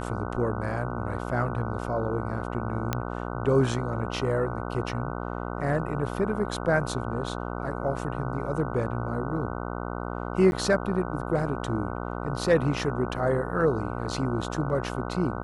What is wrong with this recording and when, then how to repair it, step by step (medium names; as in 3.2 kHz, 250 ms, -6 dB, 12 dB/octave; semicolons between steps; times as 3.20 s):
buzz 60 Hz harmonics 25 -33 dBFS
2.93 s: pop -11 dBFS
10.51–10.52 s: dropout 11 ms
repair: de-click; de-hum 60 Hz, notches 25; interpolate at 10.51 s, 11 ms